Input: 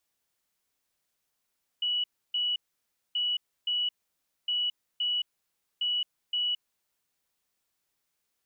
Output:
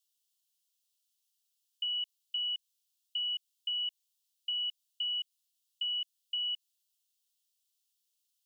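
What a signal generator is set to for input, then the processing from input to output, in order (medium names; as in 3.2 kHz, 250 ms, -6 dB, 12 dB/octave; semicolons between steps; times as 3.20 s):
beep pattern sine 2.94 kHz, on 0.22 s, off 0.30 s, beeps 2, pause 0.59 s, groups 4, -25.5 dBFS
steep high-pass 2.8 kHz 72 dB/octave; compression, threshold -32 dBFS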